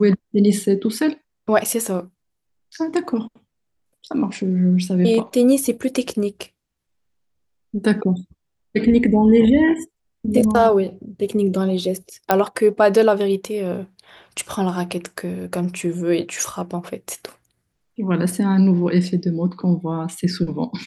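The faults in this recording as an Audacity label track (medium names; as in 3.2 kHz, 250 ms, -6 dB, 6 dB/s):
1.640000	1.650000	dropout 6.5 ms
12.310000	12.310000	pop -2 dBFS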